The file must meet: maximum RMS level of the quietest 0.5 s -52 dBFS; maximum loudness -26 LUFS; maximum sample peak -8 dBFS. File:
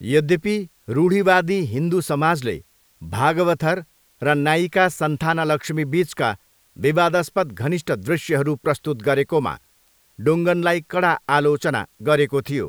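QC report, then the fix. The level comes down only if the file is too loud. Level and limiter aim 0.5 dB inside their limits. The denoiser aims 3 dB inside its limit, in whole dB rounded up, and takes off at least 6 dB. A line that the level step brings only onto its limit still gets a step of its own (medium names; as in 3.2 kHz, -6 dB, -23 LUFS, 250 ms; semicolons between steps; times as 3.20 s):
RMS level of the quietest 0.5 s -59 dBFS: pass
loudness -20.5 LUFS: fail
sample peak -2.0 dBFS: fail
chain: trim -6 dB; peak limiter -8.5 dBFS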